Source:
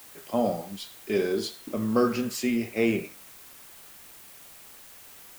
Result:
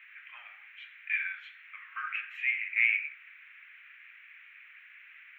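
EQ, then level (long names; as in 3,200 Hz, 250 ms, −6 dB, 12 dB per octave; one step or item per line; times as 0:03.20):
Butterworth high-pass 1,700 Hz 36 dB per octave
elliptic low-pass filter 2,400 Hz, stop band 50 dB
spectral tilt +1.5 dB per octave
+8.5 dB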